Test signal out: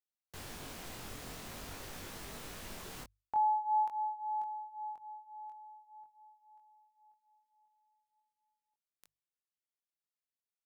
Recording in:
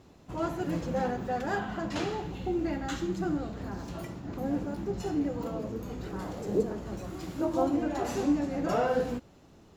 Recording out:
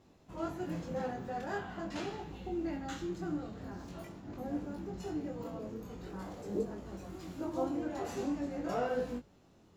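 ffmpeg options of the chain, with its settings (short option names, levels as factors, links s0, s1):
-af "bandreject=f=50:t=h:w=6,bandreject=f=100:t=h:w=6,bandreject=f=150:t=h:w=6,flanger=delay=20:depth=3.4:speed=0.45,volume=0.631"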